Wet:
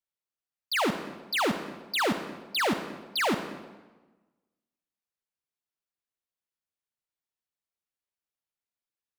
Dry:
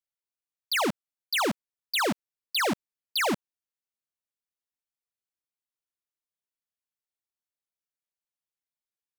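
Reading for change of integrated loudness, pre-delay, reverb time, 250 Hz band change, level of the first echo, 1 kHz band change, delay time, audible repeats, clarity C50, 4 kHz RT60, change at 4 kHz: −0.5 dB, 38 ms, 1.2 s, +0.5 dB, no echo audible, +0.5 dB, no echo audible, no echo audible, 8.5 dB, 0.95 s, −1.5 dB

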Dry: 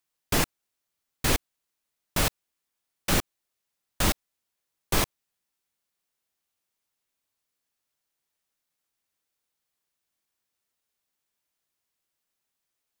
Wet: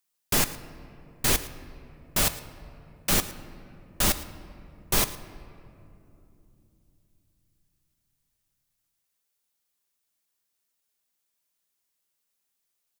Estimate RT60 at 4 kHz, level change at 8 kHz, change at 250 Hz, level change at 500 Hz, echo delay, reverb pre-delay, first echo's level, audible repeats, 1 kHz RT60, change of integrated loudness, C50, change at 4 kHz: 1.3 s, +4.0 dB, −1.5 dB, −1.0 dB, 111 ms, 5 ms, −18.5 dB, 1, 2.5 s, +2.0 dB, 13.0 dB, +1.5 dB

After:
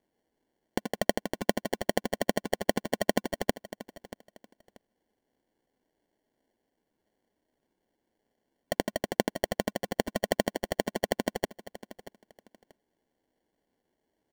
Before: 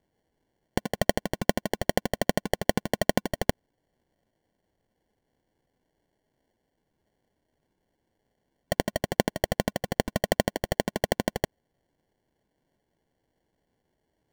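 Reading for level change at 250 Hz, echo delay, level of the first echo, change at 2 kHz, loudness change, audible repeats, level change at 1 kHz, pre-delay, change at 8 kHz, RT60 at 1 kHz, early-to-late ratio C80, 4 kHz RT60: −2.5 dB, 634 ms, −16.0 dB, −3.0 dB, −3.0 dB, 2, −2.5 dB, no reverb audible, −3.0 dB, no reverb audible, no reverb audible, no reverb audible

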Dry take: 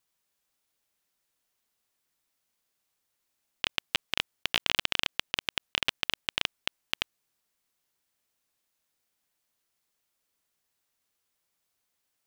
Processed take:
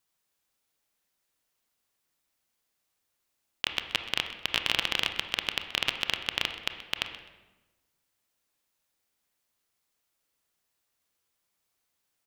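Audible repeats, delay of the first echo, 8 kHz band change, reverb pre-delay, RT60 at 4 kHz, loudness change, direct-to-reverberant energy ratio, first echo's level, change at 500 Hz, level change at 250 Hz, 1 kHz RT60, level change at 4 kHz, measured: 1, 128 ms, 0.0 dB, 24 ms, 0.85 s, +0.5 dB, 6.5 dB, −16.5 dB, +1.0 dB, +1.0 dB, 1.1 s, +0.5 dB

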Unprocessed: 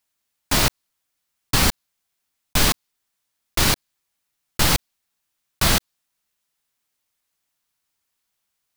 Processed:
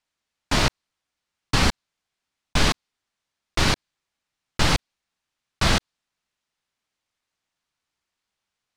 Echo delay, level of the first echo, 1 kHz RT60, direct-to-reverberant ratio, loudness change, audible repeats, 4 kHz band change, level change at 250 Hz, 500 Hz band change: no echo audible, no echo audible, no reverb audible, no reverb audible, −3.0 dB, no echo audible, −2.5 dB, 0.0 dB, 0.0 dB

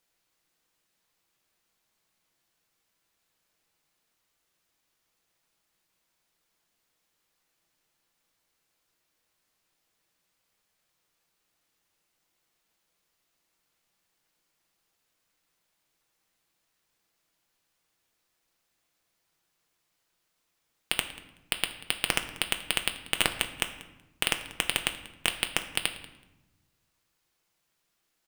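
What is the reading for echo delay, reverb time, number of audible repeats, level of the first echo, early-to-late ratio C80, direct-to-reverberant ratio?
188 ms, 1.0 s, 1, −20.5 dB, 13.0 dB, 6.0 dB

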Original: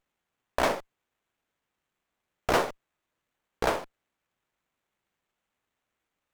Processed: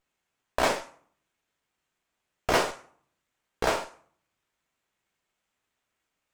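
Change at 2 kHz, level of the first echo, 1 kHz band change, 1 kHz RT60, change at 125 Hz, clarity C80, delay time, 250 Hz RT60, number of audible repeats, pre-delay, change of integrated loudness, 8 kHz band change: +2.0 dB, no echo audible, +0.5 dB, 0.55 s, 0.0 dB, 17.0 dB, no echo audible, 0.75 s, no echo audible, 3 ms, +1.0 dB, +4.5 dB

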